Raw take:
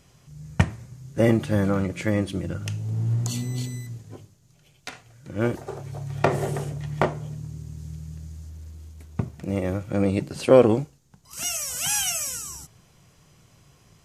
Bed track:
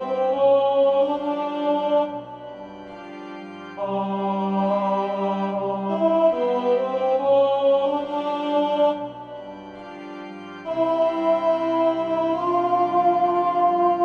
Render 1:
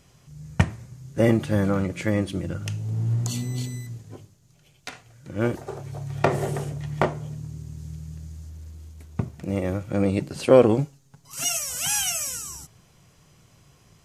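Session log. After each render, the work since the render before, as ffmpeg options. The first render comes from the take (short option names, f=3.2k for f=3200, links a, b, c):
-filter_complex "[0:a]asettb=1/sr,asplit=3[a][b][c];[a]atrim=end=10.784[d];[b]atrim=start=10.78:end=11.59,asetpts=PTS-STARTPTS,afade=t=in:d=0.004:c=qsin,afade=t=out:st=0.806:d=0.004:c=qsin,aecho=1:1:7.3:0.83,atrim=end_sample=35721[e];[c]atrim=start=11.586[f];[d][e]acrossfade=d=0.004:c1=hsin:c2=qsin[g];[g][f]acrossfade=d=0.004:c1=qsin:c2=hsin"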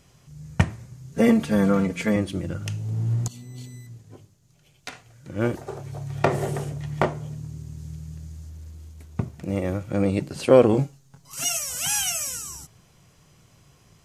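-filter_complex "[0:a]asettb=1/sr,asplit=3[a][b][c];[a]atrim=end=1.124[d];[b]atrim=start=1.12:end=2.16,asetpts=PTS-STARTPTS,afade=t=in:d=0.004:c=qsin,afade=t=out:st=1.036:d=0.004:c=qsin,aecho=1:1:4.4:0.92,atrim=end_sample=45864[e];[c]atrim=start=2.156[f];[d][e]acrossfade=d=0.004:c1=hsin:c2=qsin[g];[g][f]acrossfade=d=0.004:c1=qsin:c2=hsin,asettb=1/sr,asplit=3[h][i][j];[h]atrim=end=10.714[k];[i]atrim=start=10.71:end=11.35,asetpts=PTS-STARTPTS,afade=t=in:d=0.004:c=qsin,afade=t=out:st=0.636:d=0.004:c=qsin,asplit=2[l][m];[m]adelay=23,volume=-6dB[n];[l][n]amix=inputs=2:normalize=0,atrim=end_sample=28224[o];[j]atrim=start=11.346[p];[k][o]acrossfade=d=0.004:c1=hsin:c2=qsin[q];[q][p]acrossfade=d=0.004:c1=qsin:c2=hsin,asplit=2[r][s];[r]atrim=end=3.28,asetpts=PTS-STARTPTS,afade=t=out:st=3.276:d=0.004:c=hsin:silence=0.16788[t];[s]atrim=start=3.28,asetpts=PTS-STARTPTS,afade=t=in:d=1.6:silence=0.16788[u];[t][u]concat=n=2:v=0:a=1"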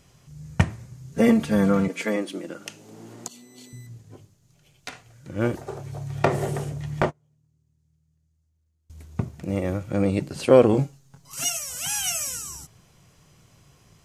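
-filter_complex "[0:a]asettb=1/sr,asplit=3[a][b][c];[a]atrim=end=1.884[d];[b]atrim=start=1.88:end=3.73,asetpts=PTS-STARTPTS,afade=t=in:d=0.004:c=qsin,afade=t=out:st=1.846:d=0.004:c=qsin,highpass=f=250:w=0.5412,highpass=f=250:w=1.3066[e];[c]atrim=start=3.726[f];[d][e]acrossfade=d=0.004:c1=hsin:c2=qsin[g];[g][f]acrossfade=d=0.004:c1=qsin:c2=hsin,asettb=1/sr,asplit=3[h][i][j];[h]atrim=end=7.014[k];[i]atrim=start=7.01:end=8.9,asetpts=PTS-STARTPTS,afade=t=in:d=0.004:c=qsin,afade=t=out:st=1.886:d=0.004:c=qsin,agate=range=-31dB:threshold=-28dB:ratio=16:release=100:detection=peak[l];[j]atrim=start=8.896[m];[k][l]acrossfade=d=0.004:c1=hsin:c2=qsin[n];[n][m]acrossfade=d=0.004:c1=qsin:c2=hsin,asplit=3[o][p][q];[o]atrim=end=11.502[r];[p]atrim=start=11.498:end=12.042,asetpts=PTS-STARTPTS,volume=-3dB[s];[q]atrim=start=12.038[t];[r][s]acrossfade=d=0.004:c1=hsin:c2=hsin[u];[u][t]acrossfade=d=0.004:c1=hsin:c2=hsin"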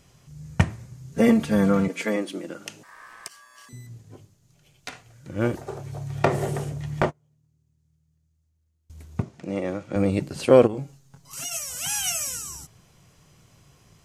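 -filter_complex "[0:a]asettb=1/sr,asplit=3[a][b][c];[a]atrim=end=2.834[d];[b]atrim=start=2.83:end=3.69,asetpts=PTS-STARTPTS,afade=t=in:d=0.004:c=qsin,afade=t=out:st=0.856:d=0.004:c=qsin,aeval=exprs='val(0)*sin(2*PI*1400*n/s)':c=same[e];[c]atrim=start=3.686[f];[d][e]acrossfade=d=0.004:c1=hsin:c2=qsin[g];[g][f]acrossfade=d=0.004:c1=qsin:c2=hsin,asettb=1/sr,asplit=3[h][i][j];[h]atrim=end=9.224[k];[i]atrim=start=9.22:end=9.96,asetpts=PTS-STARTPTS,afade=t=in:d=0.004:c=qsin,afade=t=out:st=0.736:d=0.004:c=qsin,highpass=200,lowpass=6.7k[l];[j]atrim=start=9.956[m];[k][l]acrossfade=d=0.004:c1=hsin:c2=qsin[n];[n][m]acrossfade=d=0.004:c1=qsin:c2=hsin,asplit=3[o][p][q];[o]afade=t=out:st=10.66:d=0.02[r];[p]acompressor=threshold=-32dB:ratio=2.5:attack=3.2:release=140:knee=1:detection=peak,afade=t=in:st=10.66:d=0.02,afade=t=out:st=11.51:d=0.02[s];[q]afade=t=in:st=11.51:d=0.02[t];[r][s][t]amix=inputs=3:normalize=0"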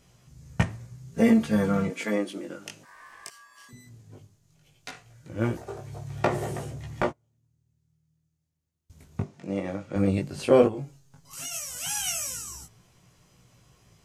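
-af "flanger=delay=16.5:depth=4.2:speed=0.15"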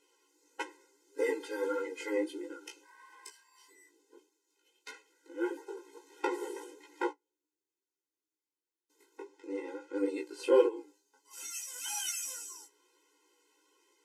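-af "flanger=delay=9:depth=9:regen=30:speed=1.6:shape=triangular,afftfilt=real='re*eq(mod(floor(b*sr/1024/270),2),1)':imag='im*eq(mod(floor(b*sr/1024/270),2),1)':win_size=1024:overlap=0.75"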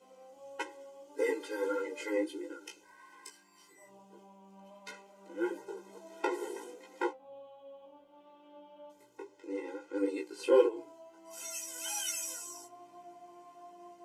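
-filter_complex "[1:a]volume=-33.5dB[a];[0:a][a]amix=inputs=2:normalize=0"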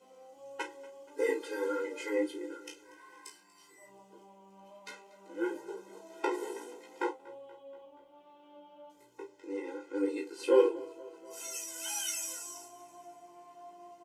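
-filter_complex "[0:a]asplit=2[a][b];[b]adelay=33,volume=-9dB[c];[a][c]amix=inputs=2:normalize=0,aecho=1:1:239|478|717|956:0.0891|0.0508|0.029|0.0165"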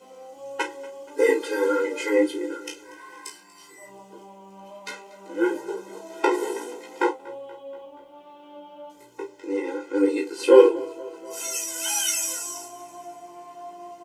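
-af "volume=11dB"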